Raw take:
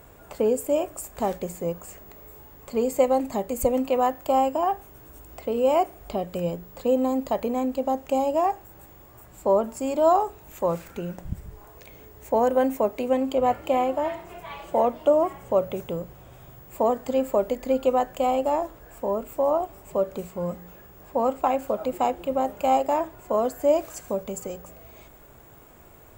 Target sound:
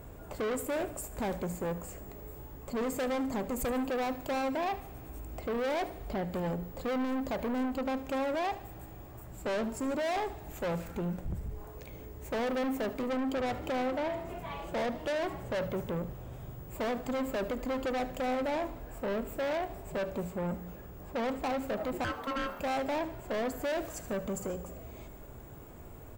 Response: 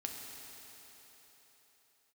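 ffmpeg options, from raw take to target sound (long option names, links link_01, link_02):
-filter_complex "[0:a]lowshelf=frequency=480:gain=9.5,asettb=1/sr,asplit=3[link_01][link_02][link_03];[link_01]atrim=end=22.044[link_04];[link_02]atrim=start=22.04:end=22.6,asetpts=PTS-STARTPTS,afade=type=in:duration=0.004:curve=qsin,afade=type=out:start_time=0.556:duration=0.004:curve=qsin,aeval=exprs='val(0)*sin(2*PI*810*n/s)':channel_layout=same[link_05];[link_03]atrim=start=22.596[link_06];[link_04][link_05]acrossfade=duration=0.004:curve1=hsin:curve2=qsin[link_07];[link_07][link_06]acrossfade=duration=0.004:curve1=qsin:curve2=hsin,asoftclip=type=tanh:threshold=-26dB,aecho=1:1:75|150|225|300:0.158|0.0729|0.0335|0.0154,asplit=2[link_08][link_09];[1:a]atrim=start_sample=2205[link_10];[link_09][link_10]afir=irnorm=-1:irlink=0,volume=-16dB[link_11];[link_08][link_11]amix=inputs=2:normalize=0,volume=-5dB"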